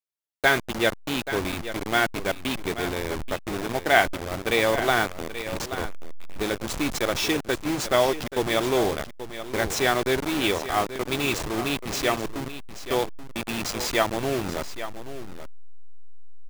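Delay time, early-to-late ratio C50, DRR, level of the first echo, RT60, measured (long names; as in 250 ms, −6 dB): 831 ms, no reverb audible, no reverb audible, −12.0 dB, no reverb audible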